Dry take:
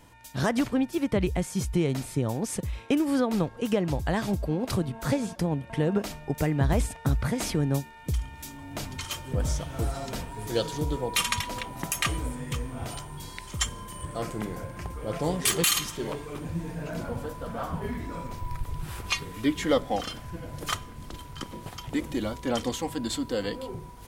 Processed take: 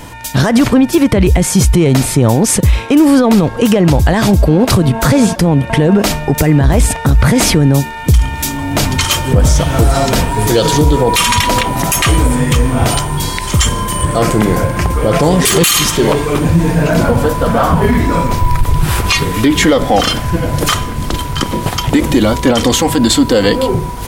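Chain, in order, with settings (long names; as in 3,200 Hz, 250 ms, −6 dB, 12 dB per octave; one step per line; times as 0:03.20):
in parallel at −8 dB: hard clipping −25 dBFS, distortion −9 dB
on the sum: boost into a limiter +21.5 dB
level −1 dB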